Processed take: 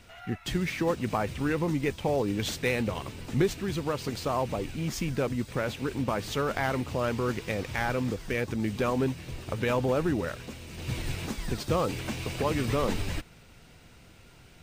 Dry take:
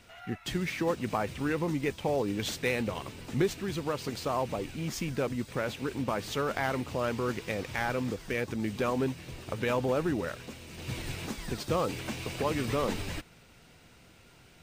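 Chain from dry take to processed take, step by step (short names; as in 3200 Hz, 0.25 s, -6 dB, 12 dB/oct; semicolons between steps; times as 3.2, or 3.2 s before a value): low shelf 100 Hz +7 dB; gain +1.5 dB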